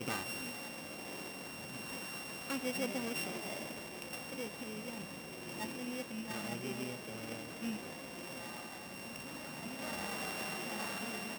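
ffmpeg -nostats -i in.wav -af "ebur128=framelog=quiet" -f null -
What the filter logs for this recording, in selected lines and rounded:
Integrated loudness:
  I:         -41.2 LUFS
  Threshold: -51.2 LUFS
Loudness range:
  LRA:         2.8 LU
  Threshold: -61.4 LUFS
  LRA low:   -42.9 LUFS
  LRA high:  -40.1 LUFS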